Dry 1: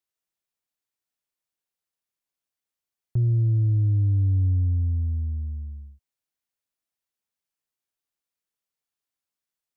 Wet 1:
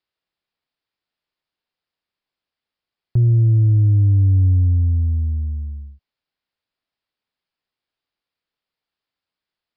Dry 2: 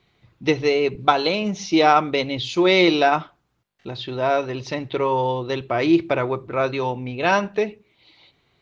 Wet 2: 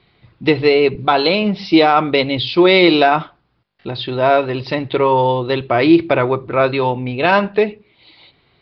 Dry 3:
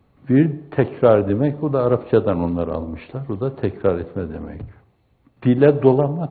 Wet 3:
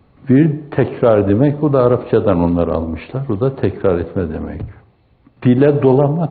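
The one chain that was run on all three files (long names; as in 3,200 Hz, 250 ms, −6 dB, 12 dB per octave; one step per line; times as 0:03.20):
downsampling to 11,025 Hz
boost into a limiter +8 dB
level −1 dB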